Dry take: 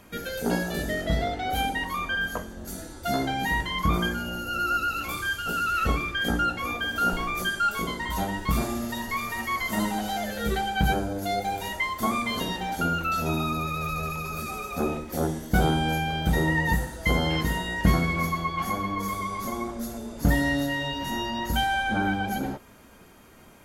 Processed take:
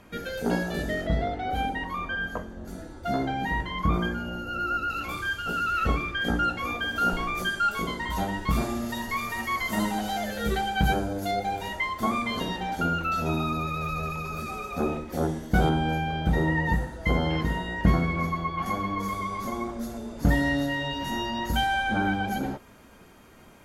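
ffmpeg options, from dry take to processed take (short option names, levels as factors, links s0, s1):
-af "asetnsamples=n=441:p=0,asendcmd='1.07 lowpass f 1600;4.9 lowpass f 3400;6.43 lowpass f 5700;8.86 lowpass f 10000;11.31 lowpass f 3800;15.69 lowpass f 1900;18.66 lowpass f 4500;20.91 lowpass f 7500',lowpass=f=3900:p=1"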